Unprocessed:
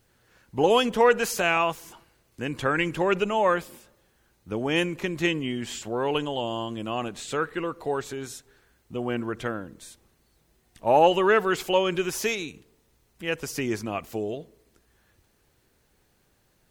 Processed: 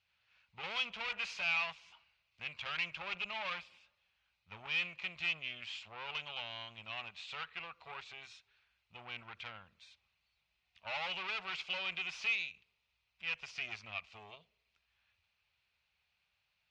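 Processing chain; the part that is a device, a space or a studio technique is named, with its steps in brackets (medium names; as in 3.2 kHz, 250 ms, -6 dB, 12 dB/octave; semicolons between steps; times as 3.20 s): scooped metal amplifier (valve stage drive 27 dB, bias 0.8; cabinet simulation 92–4200 Hz, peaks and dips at 130 Hz -9 dB, 300 Hz -4 dB, 460 Hz -6 dB, 1.7 kHz -6 dB, 2.5 kHz +9 dB; amplifier tone stack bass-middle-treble 10-0-10)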